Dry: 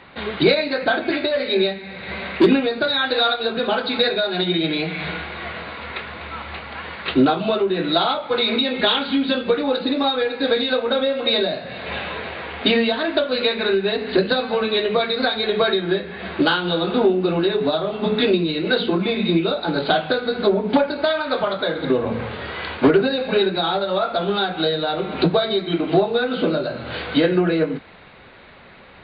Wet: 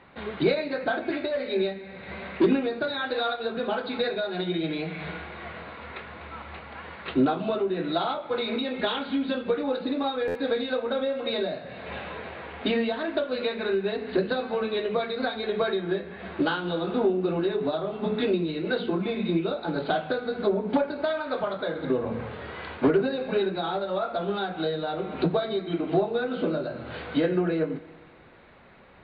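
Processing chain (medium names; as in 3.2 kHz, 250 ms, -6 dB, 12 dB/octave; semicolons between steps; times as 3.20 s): low-pass 1.8 kHz 6 dB/octave; spring tank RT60 1.9 s, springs 31/38 ms, chirp 65 ms, DRR 19 dB; buffer glitch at 10.27 s, samples 512, times 6; trim -6.5 dB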